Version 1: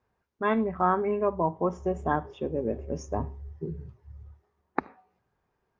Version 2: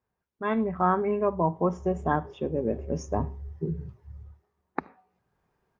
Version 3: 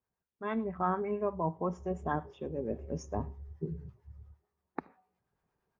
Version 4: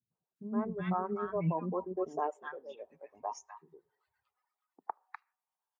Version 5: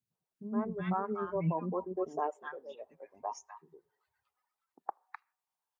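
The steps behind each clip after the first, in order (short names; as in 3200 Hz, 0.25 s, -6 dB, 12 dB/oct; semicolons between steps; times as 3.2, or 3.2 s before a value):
bell 170 Hz +4 dB 0.5 oct; AGC gain up to 10.5 dB; gain -8 dB
harmonic tremolo 8.8 Hz, depth 50%, crossover 730 Hz; gain -5 dB
reverb removal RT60 1.7 s; high-pass sweep 140 Hz -> 900 Hz, 1.37–2.59; three bands offset in time lows, mids, highs 0.11/0.36 s, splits 310/1300 Hz
record warp 33 1/3 rpm, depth 100 cents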